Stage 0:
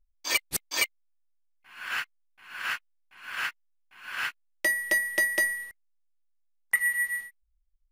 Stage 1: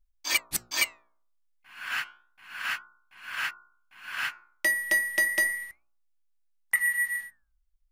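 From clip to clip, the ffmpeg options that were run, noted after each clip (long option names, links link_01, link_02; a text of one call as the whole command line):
ffmpeg -i in.wav -af "equalizer=frequency=460:width=4.3:gain=-13,bandreject=frequency=59.31:width_type=h:width=4,bandreject=frequency=118.62:width_type=h:width=4,bandreject=frequency=177.93:width_type=h:width=4,bandreject=frequency=237.24:width_type=h:width=4,bandreject=frequency=296.55:width_type=h:width=4,bandreject=frequency=355.86:width_type=h:width=4,bandreject=frequency=415.17:width_type=h:width=4,bandreject=frequency=474.48:width_type=h:width=4,bandreject=frequency=533.79:width_type=h:width=4,bandreject=frequency=593.1:width_type=h:width=4,bandreject=frequency=652.41:width_type=h:width=4,bandreject=frequency=711.72:width_type=h:width=4,bandreject=frequency=771.03:width_type=h:width=4,bandreject=frequency=830.34:width_type=h:width=4,bandreject=frequency=889.65:width_type=h:width=4,bandreject=frequency=948.96:width_type=h:width=4,bandreject=frequency=1008.27:width_type=h:width=4,bandreject=frequency=1067.58:width_type=h:width=4,bandreject=frequency=1126.89:width_type=h:width=4,bandreject=frequency=1186.2:width_type=h:width=4,bandreject=frequency=1245.51:width_type=h:width=4,bandreject=frequency=1304.82:width_type=h:width=4,bandreject=frequency=1364.13:width_type=h:width=4,bandreject=frequency=1423.44:width_type=h:width=4,bandreject=frequency=1482.75:width_type=h:width=4,flanger=delay=1.8:depth=6.7:regen=-88:speed=0.31:shape=sinusoidal,volume=5dB" out.wav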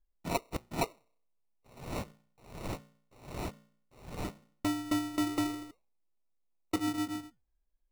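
ffmpeg -i in.wav -af "acrusher=samples=27:mix=1:aa=0.000001,volume=-6dB" out.wav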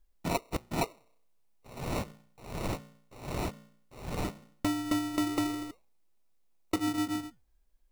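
ffmpeg -i in.wav -af "acompressor=threshold=-42dB:ratio=2,volume=9dB" out.wav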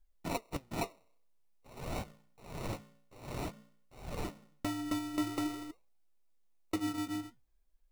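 ffmpeg -i in.wav -af "flanger=delay=1.3:depth=9.4:regen=62:speed=0.5:shape=sinusoidal,volume=-1dB" out.wav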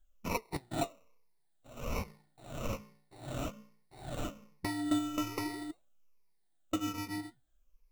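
ffmpeg -i in.wav -af "afftfilt=real='re*pow(10,12/40*sin(2*PI*(0.84*log(max(b,1)*sr/1024/100)/log(2)-(-1.2)*(pts-256)/sr)))':imag='im*pow(10,12/40*sin(2*PI*(0.84*log(max(b,1)*sr/1024/100)/log(2)-(-1.2)*(pts-256)/sr)))':win_size=1024:overlap=0.75" out.wav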